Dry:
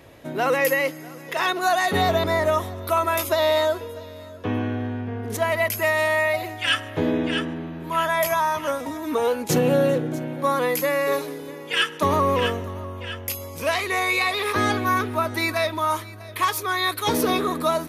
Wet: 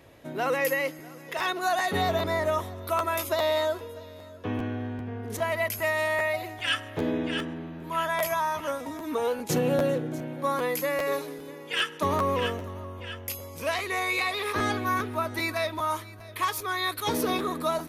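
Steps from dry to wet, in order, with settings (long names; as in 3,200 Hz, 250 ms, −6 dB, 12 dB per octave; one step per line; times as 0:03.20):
regular buffer underruns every 0.40 s, samples 512, repeat, from 0:00.98
level −5.5 dB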